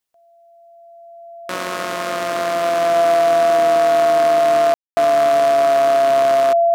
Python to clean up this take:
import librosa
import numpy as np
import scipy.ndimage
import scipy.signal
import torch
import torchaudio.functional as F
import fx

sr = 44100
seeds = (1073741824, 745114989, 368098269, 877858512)

y = fx.notch(x, sr, hz=680.0, q=30.0)
y = fx.fix_ambience(y, sr, seeds[0], print_start_s=0.0, print_end_s=0.5, start_s=4.74, end_s=4.97)